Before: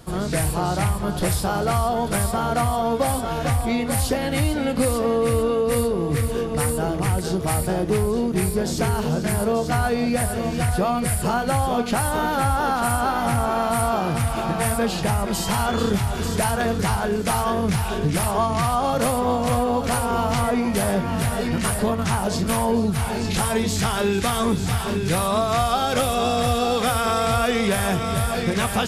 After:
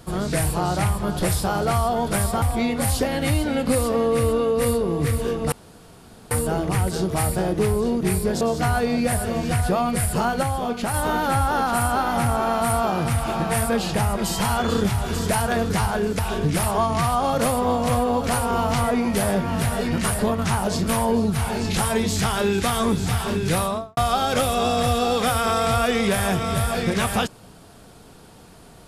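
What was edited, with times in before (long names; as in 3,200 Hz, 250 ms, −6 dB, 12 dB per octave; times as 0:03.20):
0:02.42–0:03.52: remove
0:06.62: splice in room tone 0.79 s
0:08.72–0:09.50: remove
0:11.52–0:12.03: clip gain −3.5 dB
0:17.28–0:17.79: remove
0:25.18–0:25.57: fade out and dull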